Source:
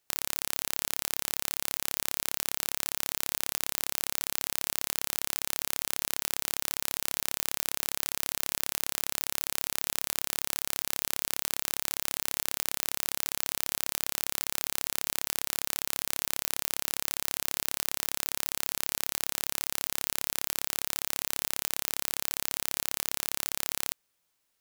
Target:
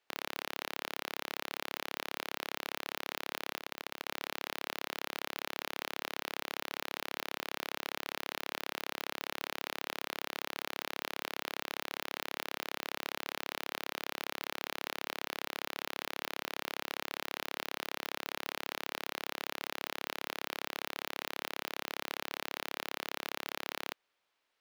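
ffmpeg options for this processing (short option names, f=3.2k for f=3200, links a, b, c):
-filter_complex "[0:a]acrossover=split=300 4200:gain=0.2 1 0.112[a][b][c];[a][b][c]amix=inputs=3:normalize=0,volume=24.5dB,asoftclip=hard,volume=-24.5dB,asplit=3[d][e][f];[d]afade=t=out:st=3.56:d=0.02[g];[e]tremolo=f=90:d=0.788,afade=t=in:st=3.56:d=0.02,afade=t=out:st=4.07:d=0.02[h];[f]afade=t=in:st=4.07:d=0.02[i];[g][h][i]amix=inputs=3:normalize=0,volume=2.5dB"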